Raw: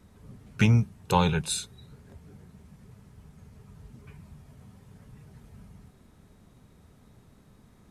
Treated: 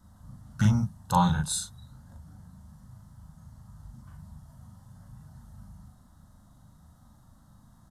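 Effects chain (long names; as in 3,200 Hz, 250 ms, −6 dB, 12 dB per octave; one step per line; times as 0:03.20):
phaser with its sweep stopped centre 1,000 Hz, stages 4
double-tracking delay 39 ms −2 dB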